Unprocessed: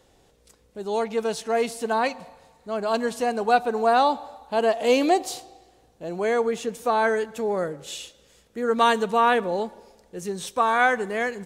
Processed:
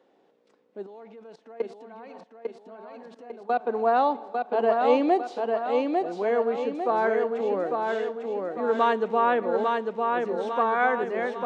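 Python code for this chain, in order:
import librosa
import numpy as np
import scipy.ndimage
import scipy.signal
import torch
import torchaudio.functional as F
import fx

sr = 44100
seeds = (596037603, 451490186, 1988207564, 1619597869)

y = fx.spacing_loss(x, sr, db_at_10k=34)
y = fx.level_steps(y, sr, step_db=22, at=(0.86, 3.67))
y = scipy.signal.sosfilt(scipy.signal.butter(4, 230.0, 'highpass', fs=sr, output='sos'), y)
y = fx.echo_feedback(y, sr, ms=849, feedback_pct=49, wet_db=-3.5)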